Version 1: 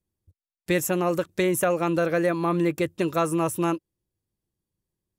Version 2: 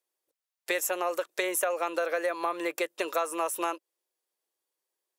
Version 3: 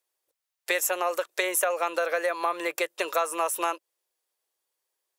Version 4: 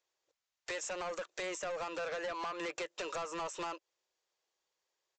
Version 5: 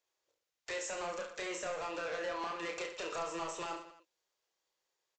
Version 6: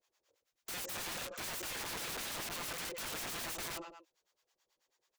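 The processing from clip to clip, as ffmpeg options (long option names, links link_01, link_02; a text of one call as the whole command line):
ffmpeg -i in.wav -af "highpass=frequency=490:width=0.5412,highpass=frequency=490:width=1.3066,acompressor=threshold=-31dB:ratio=4,volume=4.5dB" out.wav
ffmpeg -i in.wav -af "equalizer=frequency=240:width_type=o:width=1.1:gain=-11,volume=4dB" out.wav
ffmpeg -i in.wav -af "acompressor=threshold=-28dB:ratio=6,aresample=16000,asoftclip=type=tanh:threshold=-35dB,aresample=44100" out.wav
ffmpeg -i in.wav -af "aecho=1:1:30|69|119.7|185.6|271.3:0.631|0.398|0.251|0.158|0.1,volume=-2dB" out.wav
ffmpeg -i in.wav -filter_complex "[0:a]acrossover=split=620[link_01][link_02];[link_01]aeval=exprs='val(0)*(1-1/2+1/2*cos(2*PI*9.2*n/s))':channel_layout=same[link_03];[link_02]aeval=exprs='val(0)*(1-1/2-1/2*cos(2*PI*9.2*n/s))':channel_layout=same[link_04];[link_03][link_04]amix=inputs=2:normalize=0,aeval=exprs='(mod(188*val(0)+1,2)-1)/188':channel_layout=same,volume=9dB" out.wav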